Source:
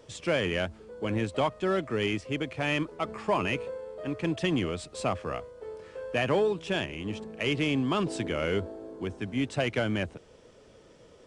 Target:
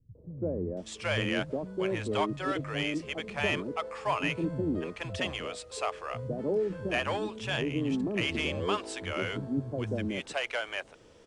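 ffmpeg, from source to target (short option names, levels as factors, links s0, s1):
-filter_complex "[0:a]acrossover=split=170|550[s0][s1][s2];[s1]adelay=150[s3];[s2]adelay=770[s4];[s0][s3][s4]amix=inputs=3:normalize=0"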